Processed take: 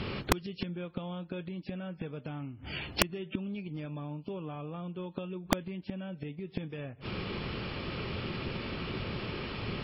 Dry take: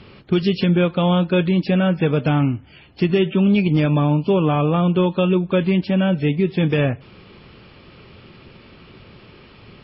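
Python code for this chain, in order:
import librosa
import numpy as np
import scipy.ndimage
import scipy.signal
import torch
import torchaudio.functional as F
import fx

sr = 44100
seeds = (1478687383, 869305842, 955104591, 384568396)

y = fx.gate_flip(x, sr, shuts_db=-14.0, range_db=-30)
y = (np.mod(10.0 ** (20.0 / 20.0) * y + 1.0, 2.0) - 1.0) / 10.0 ** (20.0 / 20.0)
y = y * librosa.db_to_amplitude(7.5)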